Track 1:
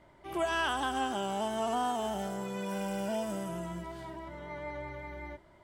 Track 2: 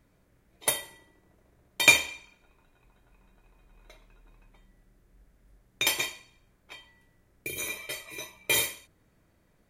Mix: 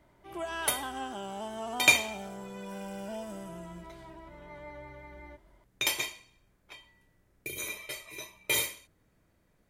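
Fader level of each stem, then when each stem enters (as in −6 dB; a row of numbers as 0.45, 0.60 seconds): −5.5, −3.0 decibels; 0.00, 0.00 seconds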